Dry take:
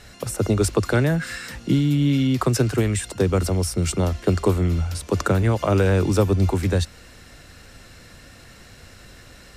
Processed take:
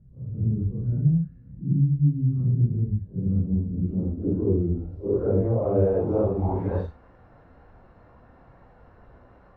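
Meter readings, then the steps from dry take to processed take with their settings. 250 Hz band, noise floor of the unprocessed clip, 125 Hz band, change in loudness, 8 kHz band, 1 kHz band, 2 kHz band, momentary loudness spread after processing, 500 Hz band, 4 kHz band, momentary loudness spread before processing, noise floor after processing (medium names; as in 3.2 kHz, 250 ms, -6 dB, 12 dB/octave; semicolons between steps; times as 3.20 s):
-4.0 dB, -47 dBFS, -2.0 dB, -3.5 dB, under -40 dB, -10.0 dB, under -20 dB, 7 LU, -3.5 dB, under -35 dB, 6 LU, -54 dBFS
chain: phase randomisation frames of 200 ms; low-pass sweep 160 Hz -> 930 Hz, 3.04–6.82 s; trim -6 dB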